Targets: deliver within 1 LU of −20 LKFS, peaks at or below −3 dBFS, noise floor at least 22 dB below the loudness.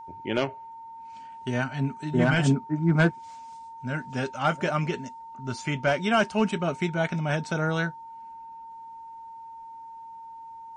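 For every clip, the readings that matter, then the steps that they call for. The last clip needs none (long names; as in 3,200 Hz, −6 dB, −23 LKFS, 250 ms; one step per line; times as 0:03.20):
interfering tone 910 Hz; level of the tone −40 dBFS; integrated loudness −27.0 LKFS; sample peak −11.0 dBFS; target loudness −20.0 LKFS
→ notch filter 910 Hz, Q 30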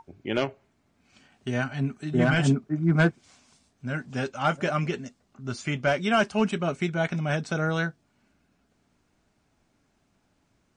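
interfering tone none found; integrated loudness −26.5 LKFS; sample peak −11.5 dBFS; target loudness −20.0 LKFS
→ level +6.5 dB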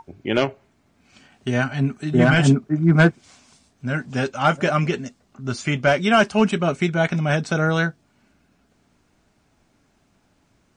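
integrated loudness −20.0 LKFS; sample peak −5.0 dBFS; background noise floor −64 dBFS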